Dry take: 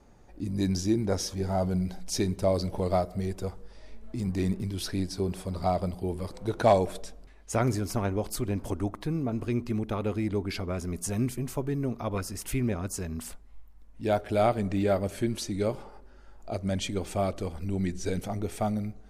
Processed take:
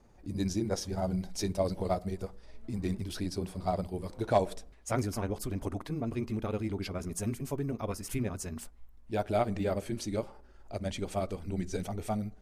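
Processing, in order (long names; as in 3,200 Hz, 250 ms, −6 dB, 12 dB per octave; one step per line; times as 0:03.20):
time stretch by overlap-add 0.65×, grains 104 ms
level −3 dB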